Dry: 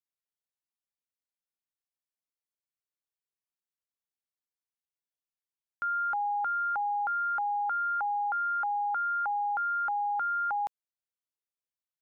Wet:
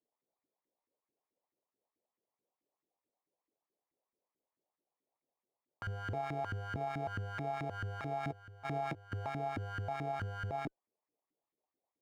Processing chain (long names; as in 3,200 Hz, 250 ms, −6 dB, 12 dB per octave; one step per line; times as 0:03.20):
lower of the sound and its delayed copy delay 0.7 ms
sample-rate reduction 1,500 Hz, jitter 0%
0:08.23–0:09.12: compressor whose output falls as the input rises −36 dBFS, ratio −0.5
auto-filter band-pass saw up 4.6 Hz 280–1,700 Hz
brickwall limiter −38.5 dBFS, peak gain reduction 7 dB
level +10 dB